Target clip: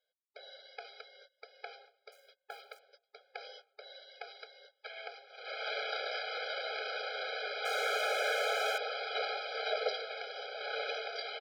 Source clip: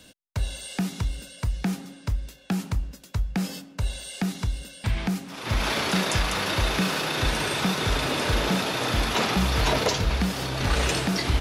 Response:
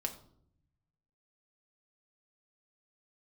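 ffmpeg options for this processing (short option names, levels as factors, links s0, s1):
-filter_complex "[0:a]agate=range=0.0794:threshold=0.0126:ratio=16:detection=peak,aresample=11025,aresample=44100,asettb=1/sr,asplit=3[s0][s1][s2];[s0]atrim=end=2.124[s3];[s1]atrim=start=2.12:end=2.79,asetpts=PTS-STARTPTS,afade=t=in:d=0.004:c=qsin,afade=t=out:st=0.666:d=0.004:c=qsin,acrusher=bits=8:mode=log:mix=0:aa=0.000001[s4];[s2]atrim=start=2.786[s5];[s3][s4]acrossfade=d=0.004:c1=hsin:c2=qsin[s6];[s6][s5]acrossfade=d=0.004:c1=qsin:c2=hsin,asettb=1/sr,asplit=3[s7][s8][s9];[s7]atrim=end=7.654[s10];[s8]atrim=start=7.65:end=8.78,asetpts=PTS-STARTPTS,afade=t=in:d=0.004:c=qsin,afade=t=out:st=1.126:d=0.004:c=qsin,asplit=2[s11][s12];[s12]highpass=f=720:p=1,volume=56.2,asoftclip=type=tanh:threshold=0.2[s13];[s11][s13]amix=inputs=2:normalize=0,lowpass=f=2100:p=1,volume=0.501[s14];[s9]atrim=start=8.776[s15];[s10][s14]acrossfade=d=0.004:c1=hsin:c2=qsin[s16];[s16][s15]acrossfade=d=0.004:c1=qsin:c2=hsin,asplit=2[s17][s18];[s18]adelay=1091,lowpass=f=1500:p=1,volume=0.0841,asplit=2[s19][s20];[s20]adelay=1091,lowpass=f=1500:p=1,volume=0.35,asplit=2[s21][s22];[s22]adelay=1091,lowpass=f=1500:p=1,volume=0.35[s23];[s17][s19][s21][s23]amix=inputs=4:normalize=0,afftfilt=real='re*eq(mod(floor(b*sr/1024/420),2),1)':imag='im*eq(mod(floor(b*sr/1024/420),2),1)':win_size=1024:overlap=0.75,volume=0.422"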